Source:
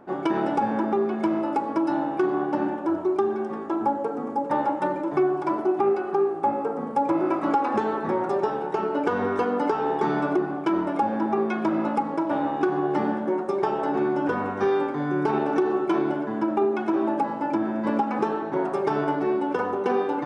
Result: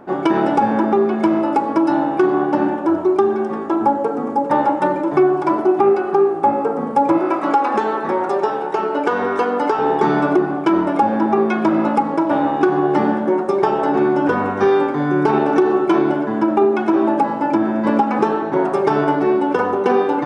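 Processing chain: 7.18–9.79 HPF 390 Hz 6 dB/oct; gain +8 dB

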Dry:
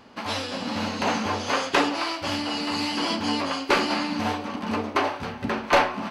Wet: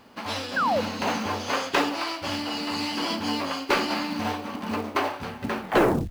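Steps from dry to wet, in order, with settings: tape stop at the end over 0.51 s; companded quantiser 6-bit; painted sound fall, 0.56–0.81, 460–1700 Hz -21 dBFS; gain -2 dB

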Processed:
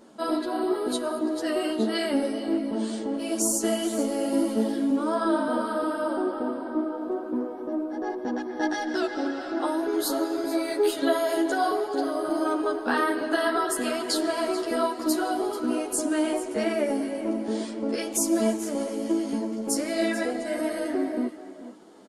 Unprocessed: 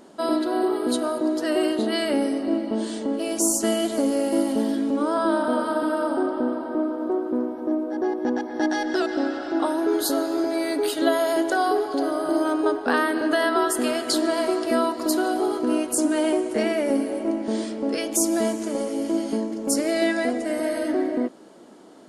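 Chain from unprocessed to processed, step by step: echo 0.438 s -14 dB; ensemble effect

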